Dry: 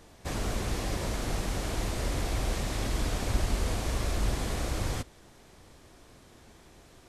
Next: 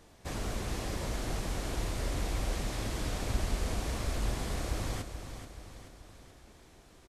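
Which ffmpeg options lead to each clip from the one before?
ffmpeg -i in.wav -af "aecho=1:1:431|862|1293|1724|2155|2586:0.335|0.171|0.0871|0.0444|0.0227|0.0116,volume=-4dB" out.wav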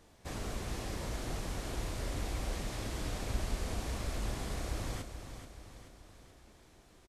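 ffmpeg -i in.wav -filter_complex "[0:a]asplit=2[link_01][link_02];[link_02]adelay=33,volume=-13dB[link_03];[link_01][link_03]amix=inputs=2:normalize=0,volume=-3.5dB" out.wav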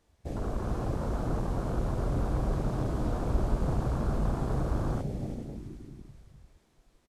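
ffmpeg -i in.wav -filter_complex "[0:a]asplit=6[link_01][link_02][link_03][link_04][link_05][link_06];[link_02]adelay=327,afreqshift=88,volume=-6.5dB[link_07];[link_03]adelay=654,afreqshift=176,volume=-13.8dB[link_08];[link_04]adelay=981,afreqshift=264,volume=-21.2dB[link_09];[link_05]adelay=1308,afreqshift=352,volume=-28.5dB[link_10];[link_06]adelay=1635,afreqshift=440,volume=-35.8dB[link_11];[link_01][link_07][link_08][link_09][link_10][link_11]amix=inputs=6:normalize=0,afwtdn=0.00891,volume=7dB" out.wav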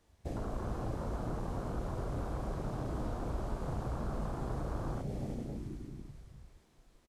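ffmpeg -i in.wav -filter_complex "[0:a]acrossover=split=410|1700[link_01][link_02][link_03];[link_01]acompressor=threshold=-36dB:ratio=4[link_04];[link_02]acompressor=threshold=-43dB:ratio=4[link_05];[link_03]acompressor=threshold=-59dB:ratio=4[link_06];[link_04][link_05][link_06]amix=inputs=3:normalize=0,asplit=2[link_07][link_08];[link_08]adelay=34,volume=-12dB[link_09];[link_07][link_09]amix=inputs=2:normalize=0" out.wav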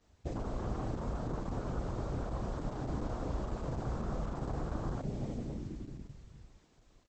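ffmpeg -i in.wav -af "volume=1dB" -ar 48000 -c:a libopus -b:a 10k out.opus

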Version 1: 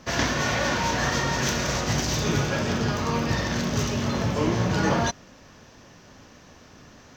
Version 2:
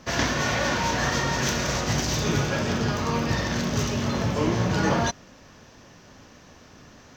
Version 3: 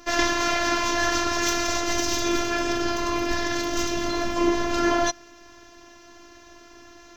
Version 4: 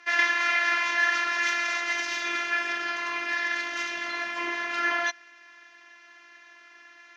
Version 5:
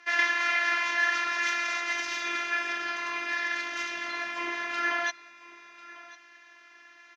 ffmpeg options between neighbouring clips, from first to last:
ffmpeg -i in.wav -af anull out.wav
ffmpeg -i in.wav -af "afftfilt=real='hypot(re,im)*cos(PI*b)':imag='0':win_size=512:overlap=0.75,volume=5.5dB" out.wav
ffmpeg -i in.wav -af "bandpass=frequency=2000:width_type=q:width=2.7:csg=0,volume=6.5dB" out.wav
ffmpeg -i in.wav -af "aecho=1:1:1047:0.119,volume=-2dB" out.wav

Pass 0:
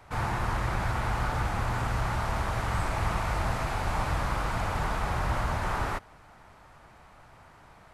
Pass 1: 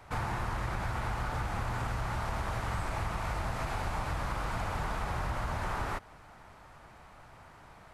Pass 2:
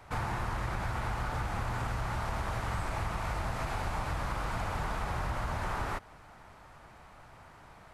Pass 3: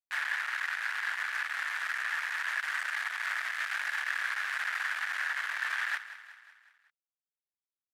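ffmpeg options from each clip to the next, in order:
ffmpeg -i in.wav -af "acompressor=threshold=-30dB:ratio=6" out.wav
ffmpeg -i in.wav -af anull out.wav
ffmpeg -i in.wav -af "acrusher=bits=4:mix=0:aa=0.5,highpass=frequency=1700:width_type=q:width=6.1,aecho=1:1:185|370|555|740|925:0.2|0.108|0.0582|0.0314|0.017,volume=-2.5dB" out.wav

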